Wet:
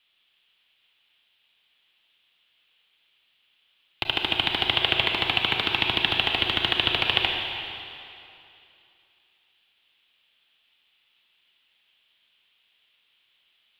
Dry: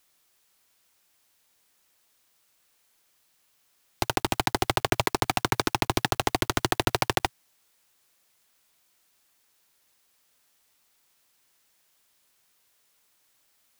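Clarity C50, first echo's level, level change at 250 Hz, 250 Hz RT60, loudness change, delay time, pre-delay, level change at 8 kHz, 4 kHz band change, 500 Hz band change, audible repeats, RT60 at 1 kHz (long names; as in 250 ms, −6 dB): 2.0 dB, no echo audible, −5.0 dB, 2.6 s, +3.5 dB, no echo audible, 29 ms, below −20 dB, +10.0 dB, −4.5 dB, no echo audible, 2.7 s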